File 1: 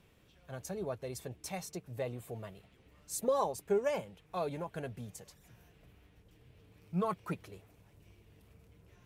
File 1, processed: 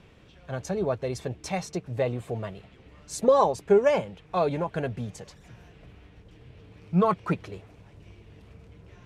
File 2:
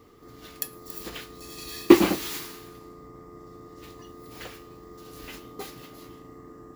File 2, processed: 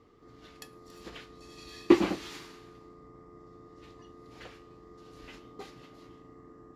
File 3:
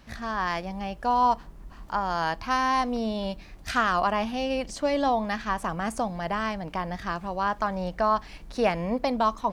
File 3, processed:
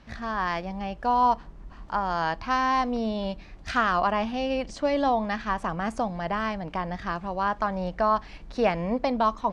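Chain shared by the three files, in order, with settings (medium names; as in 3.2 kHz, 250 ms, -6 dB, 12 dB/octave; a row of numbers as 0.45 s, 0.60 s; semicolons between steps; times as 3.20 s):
low-pass 6.8 kHz 12 dB/octave; treble shelf 4.4 kHz -5 dB; normalise loudness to -27 LUFS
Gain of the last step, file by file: +11.0 dB, -6.0 dB, +0.5 dB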